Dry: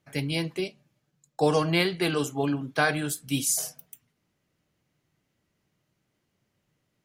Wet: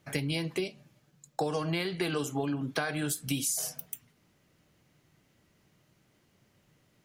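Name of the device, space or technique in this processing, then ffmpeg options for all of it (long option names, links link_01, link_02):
serial compression, peaks first: -af "acompressor=threshold=-31dB:ratio=4,acompressor=threshold=-40dB:ratio=2,volume=8dB"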